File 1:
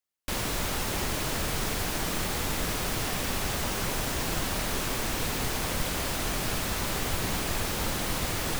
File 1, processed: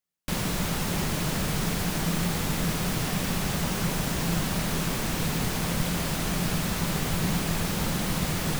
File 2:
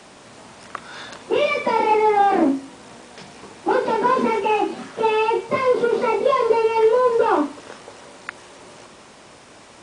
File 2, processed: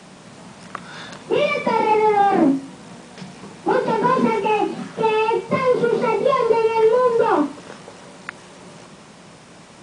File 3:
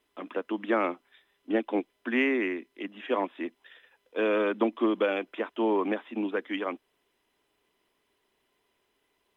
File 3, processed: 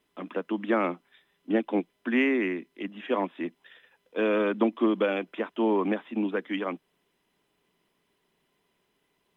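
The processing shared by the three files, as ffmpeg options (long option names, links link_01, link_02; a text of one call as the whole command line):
ffmpeg -i in.wav -af "equalizer=frequency=170:width=2.3:gain=13" out.wav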